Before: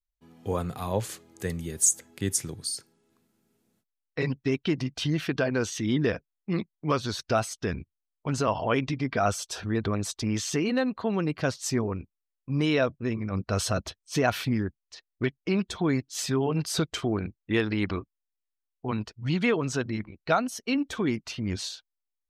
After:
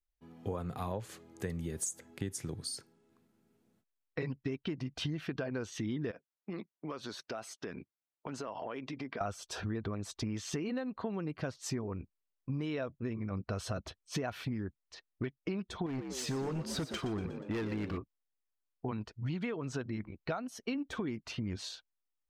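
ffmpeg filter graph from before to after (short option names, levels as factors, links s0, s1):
-filter_complex "[0:a]asettb=1/sr,asplit=3[s0][s1][s2];[s0]atrim=end=6.114[s3];[s1]atrim=start=6.11:end=9.21,asetpts=PTS-STARTPTS,afade=t=in:d=0.004:c=qsin,afade=t=out:st=3.096:d=0.004:c=qsin,highpass=250,acompressor=threshold=0.0158:ratio=6:attack=3.2:release=140:knee=1:detection=peak[s4];[s2]atrim=start=9.206[s5];[s3][s4]acrossfade=d=0.004:c1=hsin:c2=qsin[s6];[s6][s5]acrossfade=d=0.004:c1=qsin:c2=hsin,asettb=1/sr,asplit=3[s7][s8][s9];[s7]atrim=end=15.864[s10];[s8]atrim=start=15.86:end=17.98,asetpts=PTS-STARTPTS,afade=t=in:d=0.004:c=qsin,afade=t=out:st=2.116:d=0.004:c=qsin,volume=18.8,asoftclip=hard,volume=0.0531,asplit=6[s11][s12][s13][s14][s15][s16];[s12]adelay=120,afreqshift=59,volume=0.316[s17];[s13]adelay=240,afreqshift=118,volume=0.143[s18];[s14]adelay=360,afreqshift=177,volume=0.0638[s19];[s15]adelay=480,afreqshift=236,volume=0.0288[s20];[s16]adelay=600,afreqshift=295,volume=0.013[s21];[s11][s17][s18][s19][s20][s21]amix=inputs=6:normalize=0,atrim=end_sample=93492[s22];[s9]atrim=start=17.976[s23];[s10][s22]acrossfade=d=0.004:c1=hsin:c2=qsin[s24];[s24][s23]acrossfade=d=0.004:c1=qsin:c2=hsin,highshelf=f=3100:g=-9,acompressor=threshold=0.0224:ratio=10"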